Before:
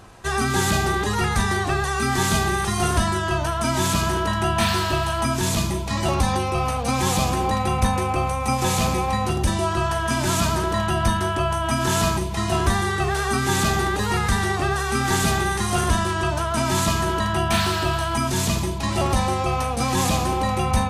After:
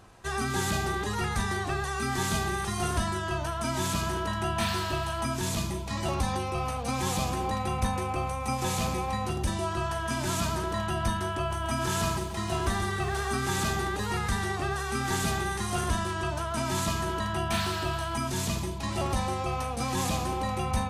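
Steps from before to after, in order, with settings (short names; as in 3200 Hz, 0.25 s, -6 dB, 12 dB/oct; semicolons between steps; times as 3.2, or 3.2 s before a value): 11.37–13.73 lo-fi delay 0.132 s, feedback 35%, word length 8-bit, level -10 dB; gain -8 dB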